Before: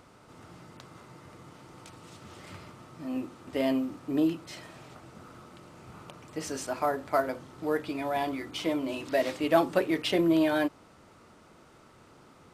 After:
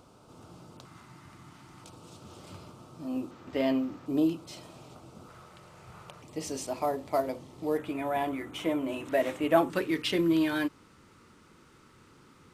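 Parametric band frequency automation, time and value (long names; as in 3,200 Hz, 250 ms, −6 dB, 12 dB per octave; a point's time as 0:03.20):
parametric band −13.5 dB 0.59 octaves
1,900 Hz
from 0:00.85 500 Hz
from 0:01.84 1,900 Hz
from 0:03.31 10,000 Hz
from 0:04.06 1,800 Hz
from 0:05.29 270 Hz
from 0:06.22 1,500 Hz
from 0:07.78 4,700 Hz
from 0:09.70 670 Hz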